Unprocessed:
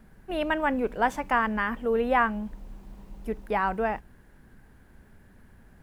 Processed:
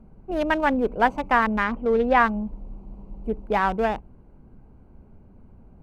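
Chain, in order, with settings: local Wiener filter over 25 samples; 1.64–2.20 s: low-pass 6.1 kHz 12 dB/octave; trim +5 dB

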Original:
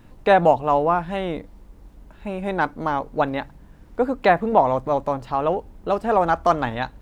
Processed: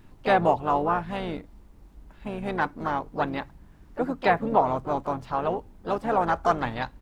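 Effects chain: peaking EQ 520 Hz -6 dB 0.38 oct; harmony voices -7 st -11 dB, +3 st -13 dB, +4 st -13 dB; trim -4.5 dB

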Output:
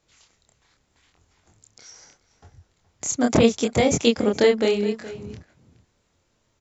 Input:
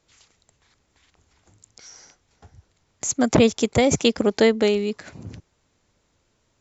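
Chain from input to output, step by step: chorus 0.79 Hz, depth 6.8 ms; echo from a far wall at 72 m, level -16 dB; trim +2 dB

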